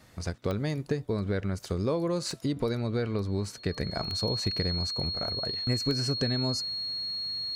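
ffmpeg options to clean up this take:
-af "adeclick=t=4,bandreject=f=4.3k:w=30"

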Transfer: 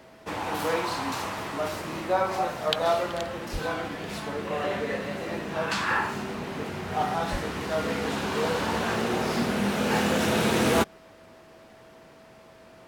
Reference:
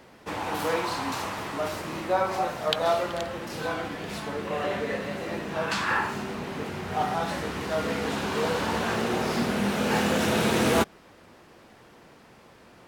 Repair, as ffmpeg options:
-filter_complex "[0:a]bandreject=f=650:w=30,asplit=3[a][b][c];[a]afade=t=out:st=3.52:d=0.02[d];[b]highpass=f=140:w=0.5412,highpass=f=140:w=1.3066,afade=t=in:st=3.52:d=0.02,afade=t=out:st=3.64:d=0.02[e];[c]afade=t=in:st=3.64:d=0.02[f];[d][e][f]amix=inputs=3:normalize=0,asplit=3[g][h][i];[g]afade=t=out:st=7.31:d=0.02[j];[h]highpass=f=140:w=0.5412,highpass=f=140:w=1.3066,afade=t=in:st=7.31:d=0.02,afade=t=out:st=7.43:d=0.02[k];[i]afade=t=in:st=7.43:d=0.02[l];[j][k][l]amix=inputs=3:normalize=0"

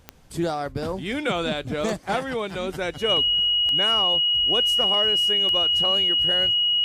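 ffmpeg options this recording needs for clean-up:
-af "adeclick=t=4,bandreject=f=2.9k:w=30"

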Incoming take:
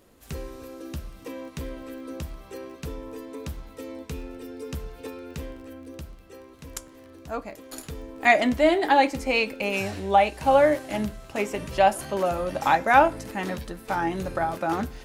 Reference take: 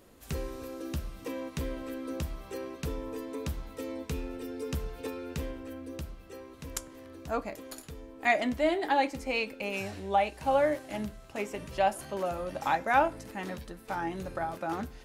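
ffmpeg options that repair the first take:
-af "adeclick=t=4,asetnsamples=n=441:p=0,asendcmd='7.73 volume volume -7.5dB',volume=0dB"

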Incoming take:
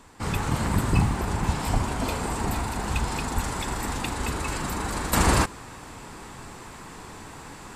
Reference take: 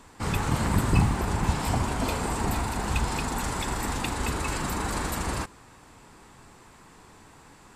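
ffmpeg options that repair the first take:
-filter_complex "[0:a]asplit=3[a][b][c];[a]afade=t=out:st=1.72:d=0.02[d];[b]highpass=f=140:w=0.5412,highpass=f=140:w=1.3066,afade=t=in:st=1.72:d=0.02,afade=t=out:st=1.84:d=0.02[e];[c]afade=t=in:st=1.84:d=0.02[f];[d][e][f]amix=inputs=3:normalize=0,asplit=3[g][h][i];[g]afade=t=out:st=3.34:d=0.02[j];[h]highpass=f=140:w=0.5412,highpass=f=140:w=1.3066,afade=t=in:st=3.34:d=0.02,afade=t=out:st=3.46:d=0.02[k];[i]afade=t=in:st=3.46:d=0.02[l];[j][k][l]amix=inputs=3:normalize=0,asetnsamples=n=441:p=0,asendcmd='5.13 volume volume -10dB',volume=0dB"

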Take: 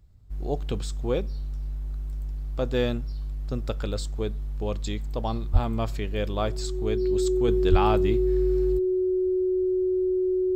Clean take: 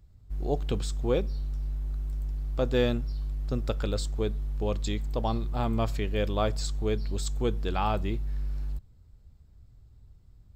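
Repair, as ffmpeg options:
-filter_complex "[0:a]bandreject=f=370:w=30,asplit=3[a][b][c];[a]afade=t=out:st=5.52:d=0.02[d];[b]highpass=f=140:w=0.5412,highpass=f=140:w=1.3066,afade=t=in:st=5.52:d=0.02,afade=t=out:st=5.64:d=0.02[e];[c]afade=t=in:st=5.64:d=0.02[f];[d][e][f]amix=inputs=3:normalize=0,asplit=3[g][h][i];[g]afade=t=out:st=7.7:d=0.02[j];[h]highpass=f=140:w=0.5412,highpass=f=140:w=1.3066,afade=t=in:st=7.7:d=0.02,afade=t=out:st=7.82:d=0.02[k];[i]afade=t=in:st=7.82:d=0.02[l];[j][k][l]amix=inputs=3:normalize=0,asetnsamples=n=441:p=0,asendcmd='7.48 volume volume -4dB',volume=0dB"

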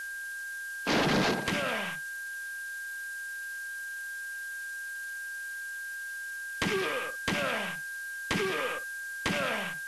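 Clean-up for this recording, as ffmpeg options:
-af "bandreject=f=1.6k:w=30,afftdn=nr=30:nf=-39"

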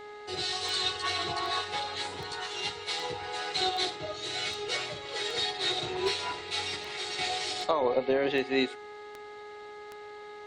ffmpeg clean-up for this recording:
-af "adeclick=t=4,bandreject=f=417.4:t=h:w=4,bandreject=f=834.8:t=h:w=4,bandreject=f=1.2522k:t=h:w=4,bandreject=f=1.6696k:t=h:w=4,bandreject=f=2.087k:t=h:w=4"

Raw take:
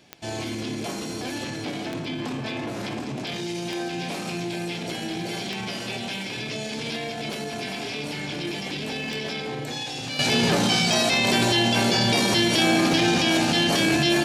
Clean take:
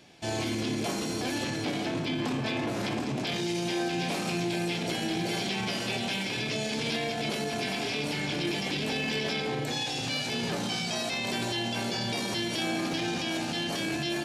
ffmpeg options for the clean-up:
-af "adeclick=t=4,asetnsamples=n=441:p=0,asendcmd='10.19 volume volume -10.5dB',volume=0dB"

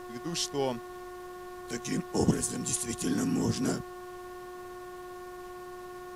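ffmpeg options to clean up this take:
-af "bandreject=f=360.8:t=h:w=4,bandreject=f=721.6:t=h:w=4,bandreject=f=1.0824k:t=h:w=4,bandreject=f=1.4432k:t=h:w=4,bandreject=f=1.804k:t=h:w=4,bandreject=f=1.1k:w=30,afftdn=nr=30:nf=-44"

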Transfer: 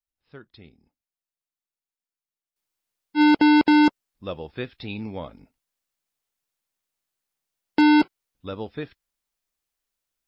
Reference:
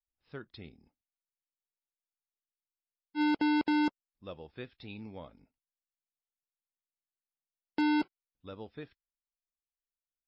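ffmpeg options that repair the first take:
-af "asetnsamples=n=441:p=0,asendcmd='2.56 volume volume -12dB',volume=0dB"

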